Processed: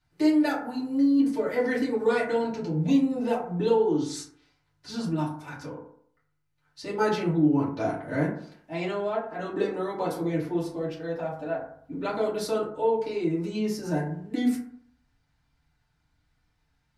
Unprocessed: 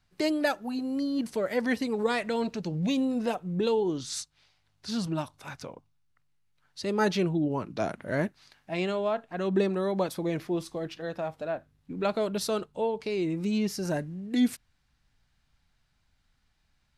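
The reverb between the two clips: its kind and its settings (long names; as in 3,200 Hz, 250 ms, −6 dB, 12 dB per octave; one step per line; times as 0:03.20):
feedback delay network reverb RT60 0.62 s, low-frequency decay 1×, high-frequency decay 0.35×, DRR −8 dB
level −8 dB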